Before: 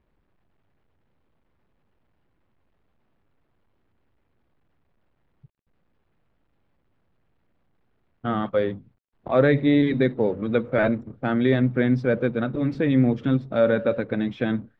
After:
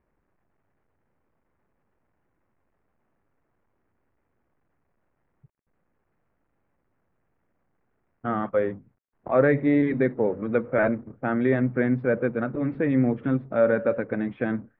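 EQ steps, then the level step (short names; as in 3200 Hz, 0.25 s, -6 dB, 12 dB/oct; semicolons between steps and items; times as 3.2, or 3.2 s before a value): LPF 2200 Hz 24 dB/oct; low shelf 210 Hz -6 dB; 0.0 dB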